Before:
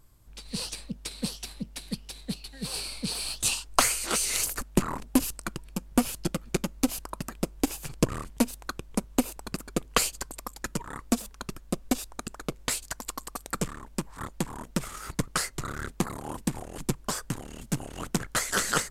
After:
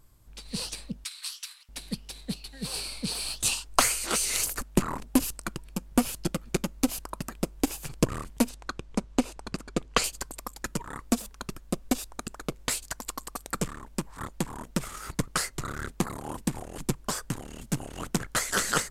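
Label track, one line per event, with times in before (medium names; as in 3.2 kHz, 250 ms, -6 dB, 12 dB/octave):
1.040000	1.690000	steep high-pass 1.1 kHz
8.490000	10.040000	low-pass 6.8 kHz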